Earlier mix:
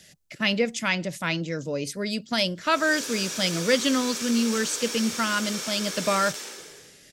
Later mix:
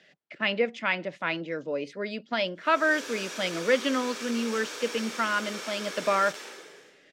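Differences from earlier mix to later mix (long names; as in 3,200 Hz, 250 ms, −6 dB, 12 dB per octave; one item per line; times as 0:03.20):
speech: add band-pass filter 200–3,500 Hz
master: add bass and treble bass −8 dB, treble −11 dB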